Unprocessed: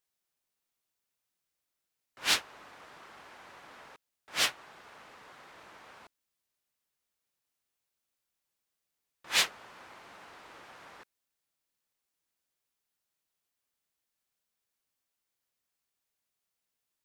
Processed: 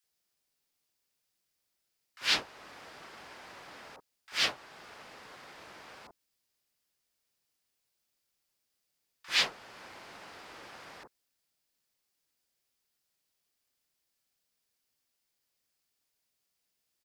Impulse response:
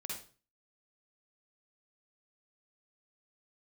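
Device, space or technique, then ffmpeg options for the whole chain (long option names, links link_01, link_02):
parallel compression: -filter_complex "[0:a]asplit=2[link_01][link_02];[link_02]acompressor=threshold=-44dB:ratio=6,volume=-6dB[link_03];[link_01][link_03]amix=inputs=2:normalize=0,equalizer=frequency=4900:width=4.2:gain=5,acrossover=split=5300[link_04][link_05];[link_05]acompressor=threshold=-44dB:ratio=4:attack=1:release=60[link_06];[link_04][link_06]amix=inputs=2:normalize=0,acrossover=split=1100[link_07][link_08];[link_07]adelay=40[link_09];[link_09][link_08]amix=inputs=2:normalize=0"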